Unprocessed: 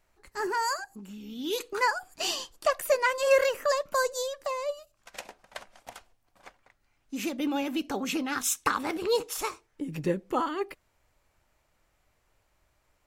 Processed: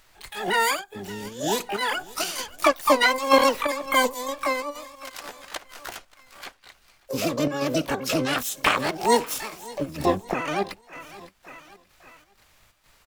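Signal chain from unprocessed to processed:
on a send: repeating echo 570 ms, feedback 47%, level −22 dB
on the sum: square-wave tremolo 2.1 Hz, depth 60%, duty 70%
pitch-shifted copies added −12 semitones −7 dB, +7 semitones −10 dB, +12 semitones −1 dB
one half of a high-frequency compander encoder only
level +3.5 dB

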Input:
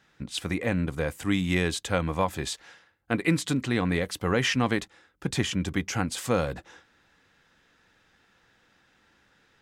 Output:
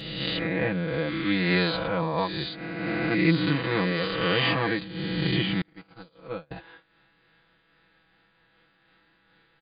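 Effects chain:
peak hold with a rise ahead of every peak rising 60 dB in 2.06 s
0:01.76–0:02.18: high-shelf EQ 3,200 Hz −10.5 dB
0:05.61–0:06.51: noise gate −19 dBFS, range −36 dB
linear-phase brick-wall low-pass 4,900 Hz
comb filter 6.1 ms, depth 93%
amplitude modulation by smooth noise, depth 65%
level −2.5 dB

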